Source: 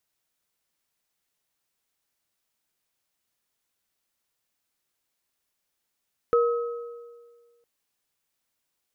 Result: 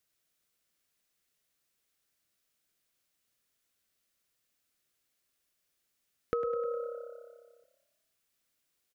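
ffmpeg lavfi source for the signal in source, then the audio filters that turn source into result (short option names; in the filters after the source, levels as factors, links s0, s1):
-f lavfi -i "aevalsrc='0.15*pow(10,-3*t/1.67)*sin(2*PI*473*t)+0.0708*pow(10,-3*t/1.31)*sin(2*PI*1280*t)':d=1.31:s=44100"
-filter_complex "[0:a]equalizer=f=890:t=o:w=0.45:g=-8,acompressor=threshold=0.0316:ratio=6,asplit=7[s0][s1][s2][s3][s4][s5][s6];[s1]adelay=102,afreqshift=34,volume=0.251[s7];[s2]adelay=204,afreqshift=68,volume=0.135[s8];[s3]adelay=306,afreqshift=102,volume=0.0733[s9];[s4]adelay=408,afreqshift=136,volume=0.0394[s10];[s5]adelay=510,afreqshift=170,volume=0.0214[s11];[s6]adelay=612,afreqshift=204,volume=0.0115[s12];[s0][s7][s8][s9][s10][s11][s12]amix=inputs=7:normalize=0"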